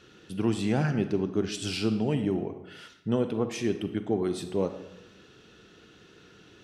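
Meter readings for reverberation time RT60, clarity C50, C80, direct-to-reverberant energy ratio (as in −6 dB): 0.95 s, 10.0 dB, 12.5 dB, 9.5 dB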